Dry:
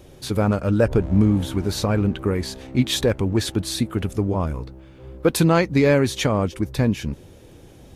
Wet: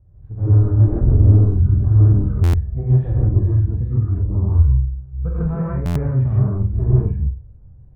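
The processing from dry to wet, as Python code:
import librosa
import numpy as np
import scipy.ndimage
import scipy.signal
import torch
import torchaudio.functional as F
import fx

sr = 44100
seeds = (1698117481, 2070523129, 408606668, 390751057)

p1 = fx.curve_eq(x, sr, hz=(120.0, 310.0, 820.0), db=(0, -26, -18))
p2 = np.clip(p1, -10.0 ** (-24.0 / 20.0), 10.0 ** (-24.0 / 20.0))
p3 = scipy.signal.sosfilt(scipy.signal.butter(4, 1700.0, 'lowpass', fs=sr, output='sos'), p2)
p4 = fx.tilt_shelf(p3, sr, db=8.0, hz=1300.0)
p5 = fx.doubler(p4, sr, ms=26.0, db=-13.0)
p6 = p5 + fx.room_flutter(p5, sr, wall_m=7.9, rt60_s=0.39, dry=0)
p7 = fx.rev_gated(p6, sr, seeds[0], gate_ms=180, shape='rising', drr_db=-6.0)
p8 = fx.noise_reduce_blind(p7, sr, reduce_db=8)
p9 = fx.buffer_glitch(p8, sr, at_s=(2.43, 5.85), block=512, repeats=8)
y = p9 * 10.0 ** (-2.0 / 20.0)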